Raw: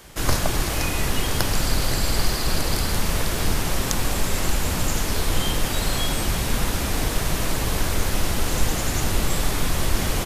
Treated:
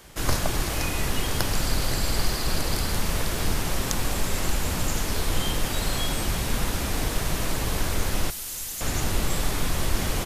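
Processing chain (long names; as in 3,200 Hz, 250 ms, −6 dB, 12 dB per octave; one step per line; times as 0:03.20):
0:08.30–0:08.81: first-order pre-emphasis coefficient 0.9
level −3 dB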